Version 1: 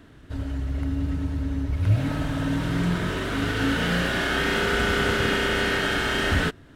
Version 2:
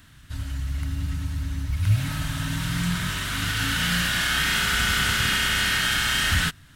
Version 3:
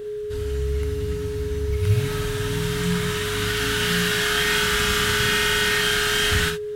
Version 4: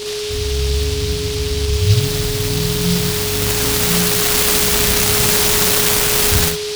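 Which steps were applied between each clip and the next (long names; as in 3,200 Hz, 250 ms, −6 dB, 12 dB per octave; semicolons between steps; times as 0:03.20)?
drawn EQ curve 160 Hz 0 dB, 420 Hz −18 dB, 1,100 Hz −1 dB, 14,000 Hz +14 dB
steady tone 420 Hz −31 dBFS; reverb whose tail is shaped and stops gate 90 ms flat, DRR 4 dB
short delay modulated by noise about 3,900 Hz, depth 0.25 ms; level +6.5 dB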